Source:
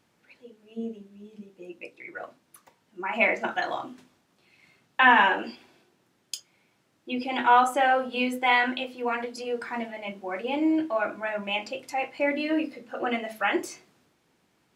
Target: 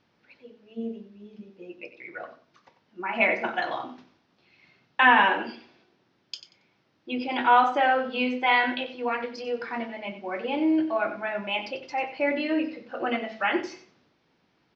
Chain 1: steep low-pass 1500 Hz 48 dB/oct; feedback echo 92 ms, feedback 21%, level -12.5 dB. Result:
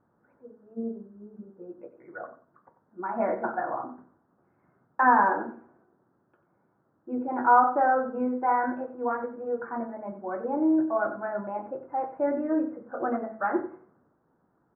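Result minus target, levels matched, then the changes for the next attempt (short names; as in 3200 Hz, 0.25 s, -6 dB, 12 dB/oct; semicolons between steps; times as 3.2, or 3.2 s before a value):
2000 Hz band -6.5 dB
change: steep low-pass 5600 Hz 48 dB/oct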